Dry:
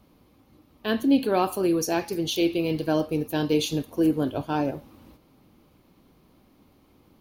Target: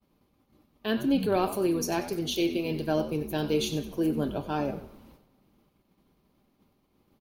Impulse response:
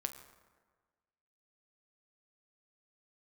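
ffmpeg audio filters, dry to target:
-filter_complex "[0:a]agate=range=-33dB:threshold=-52dB:ratio=3:detection=peak,asplit=5[link_01][link_02][link_03][link_04][link_05];[link_02]adelay=94,afreqshift=-88,volume=-13dB[link_06];[link_03]adelay=188,afreqshift=-176,volume=-21dB[link_07];[link_04]adelay=282,afreqshift=-264,volume=-28.9dB[link_08];[link_05]adelay=376,afreqshift=-352,volume=-36.9dB[link_09];[link_01][link_06][link_07][link_08][link_09]amix=inputs=5:normalize=0,asplit=2[link_10][link_11];[1:a]atrim=start_sample=2205,adelay=5[link_12];[link_11][link_12]afir=irnorm=-1:irlink=0,volume=-11dB[link_13];[link_10][link_13]amix=inputs=2:normalize=0,volume=-3.5dB"

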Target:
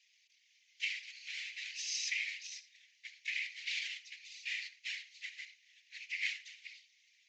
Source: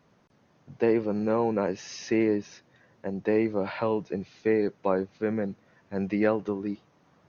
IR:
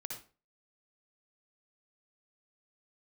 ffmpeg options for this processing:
-filter_complex "[0:a]aeval=exprs='max(val(0),0)':channel_layout=same,asuperpass=centerf=4900:order=20:qfactor=0.59,asplit=2[link_01][link_02];[1:a]atrim=start_sample=2205[link_03];[link_02][link_03]afir=irnorm=-1:irlink=0,volume=-6dB[link_04];[link_01][link_04]amix=inputs=2:normalize=0,aresample=16000,aresample=44100,afftfilt=real='hypot(re,im)*cos(2*PI*random(0))':imag='hypot(re,im)*sin(2*PI*random(1))':win_size=512:overlap=0.75,volume=13dB"

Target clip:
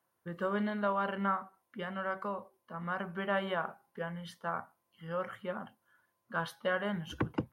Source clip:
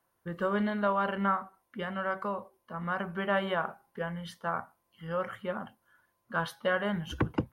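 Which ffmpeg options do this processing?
ffmpeg -i in.wav -af "highpass=92,volume=-3.5dB" out.wav

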